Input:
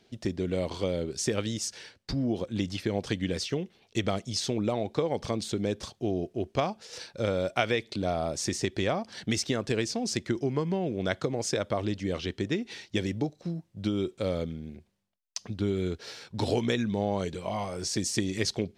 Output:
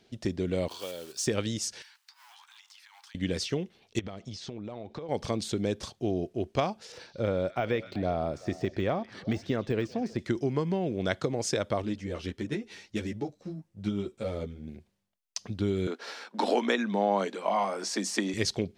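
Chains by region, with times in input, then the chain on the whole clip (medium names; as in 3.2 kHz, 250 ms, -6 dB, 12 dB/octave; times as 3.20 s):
0.68–1.27 s: block-companded coder 5-bit + high-pass 1.3 kHz 6 dB/octave + band-stop 2.1 kHz, Q 5.2
1.82–3.15 s: companding laws mixed up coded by mu + steep high-pass 830 Hz 96 dB/octave + compression 20:1, threshold -50 dBFS
3.99–5.09 s: compression 12:1, threshold -34 dBFS + distance through air 100 m
6.92–10.19 s: de-esser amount 95% + peaking EQ 8.4 kHz -12.5 dB 2.3 oct + repeats whose band climbs or falls 127 ms, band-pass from 4.6 kHz, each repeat -1.4 oct, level -10.5 dB
11.82–14.68 s: self-modulated delay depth 0.062 ms + peaking EQ 3.8 kHz -4 dB 0.9 oct + three-phase chorus
15.87–18.34 s: de-esser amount 50% + rippled Chebyshev high-pass 190 Hz, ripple 3 dB + peaking EQ 1.2 kHz +9.5 dB 2.1 oct
whole clip: none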